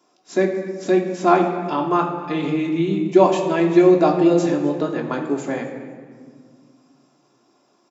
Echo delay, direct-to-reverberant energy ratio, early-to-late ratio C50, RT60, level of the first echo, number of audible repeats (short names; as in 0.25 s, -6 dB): 0.251 s, 0.5 dB, 6.5 dB, 1.9 s, -19.0 dB, 1